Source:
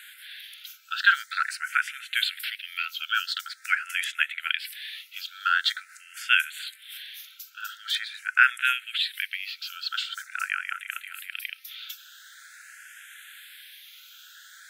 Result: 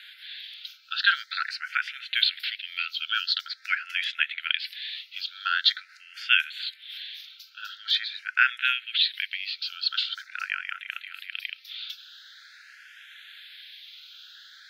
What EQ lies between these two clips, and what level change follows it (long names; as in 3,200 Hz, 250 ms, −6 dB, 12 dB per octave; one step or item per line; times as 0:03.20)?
high-pass filter 1,400 Hz
high shelf with overshoot 6,100 Hz −12.5 dB, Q 3
−1.5 dB